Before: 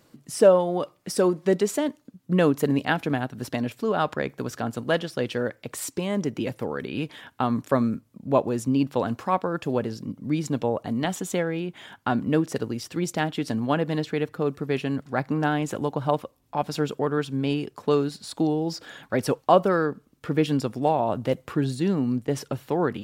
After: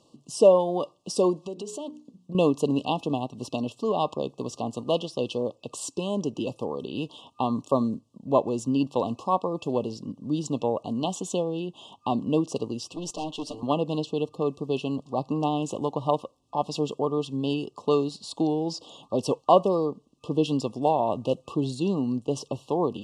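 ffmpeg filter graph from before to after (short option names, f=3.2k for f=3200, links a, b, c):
-filter_complex "[0:a]asettb=1/sr,asplit=3[a][b][c];[a]atrim=end=1.444[d];[b]atrim=start=1.44:end=2.35,asetpts=PTS-STARTPTS,afade=t=in:d=0.004:c=qsin,afade=t=out:st=0.906:d=0.004:c=qsin,bandreject=f=60:t=h:w=6,bandreject=f=120:t=h:w=6,bandreject=f=180:t=h:w=6,bandreject=f=240:t=h:w=6,bandreject=f=300:t=h:w=6,bandreject=f=360:t=h:w=6,bandreject=f=420:t=h:w=6,bandreject=f=480:t=h:w=6,acompressor=threshold=-32dB:ratio=4:attack=3.2:release=140:knee=1:detection=peak[e];[c]atrim=start=2.346[f];[d][e]acrossfade=d=0.004:c1=hsin:c2=qsin[g];[g][f]acrossfade=d=0.004:c1=qsin:c2=hsin,asettb=1/sr,asplit=3[h][i][j];[h]atrim=end=12.944[k];[i]atrim=start=12.94:end=13.63,asetpts=PTS-STARTPTS,afade=t=in:d=0.004:c=qsin,afade=t=out:st=0.686:d=0.004:c=qsin,highpass=f=320:p=1,aecho=1:1:6.7:0.99,atrim=end_sample=30429,aeval=exprs='(tanh(20*val(0)+0.6)-tanh(0.6))/20':c=same[l];[j]atrim=start=13.626[m];[k][l]acrossfade=d=0.004:c1=hsin:c2=qsin[n];[n][m]acrossfade=d=0.004:c1=qsin:c2=hsin,afftfilt=real='re*(1-between(b*sr/4096,1200,2600))':imag='im*(1-between(b*sr/4096,1200,2600))':win_size=4096:overlap=0.75,lowpass=f=8.7k:w=0.5412,lowpass=f=8.7k:w=1.3066,lowshelf=f=140:g=-8.5"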